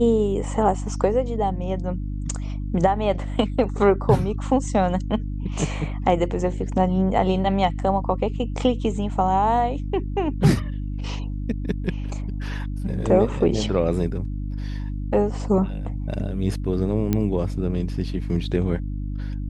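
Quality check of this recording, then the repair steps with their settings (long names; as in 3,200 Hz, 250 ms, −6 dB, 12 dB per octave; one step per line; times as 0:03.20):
mains hum 50 Hz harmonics 6 −28 dBFS
0:17.13: click −9 dBFS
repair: click removal
hum removal 50 Hz, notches 6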